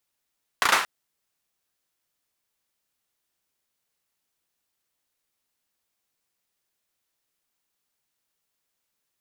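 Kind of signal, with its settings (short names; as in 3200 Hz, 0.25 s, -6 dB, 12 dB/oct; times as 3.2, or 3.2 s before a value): hand clap length 0.23 s, apart 34 ms, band 1300 Hz, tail 0.44 s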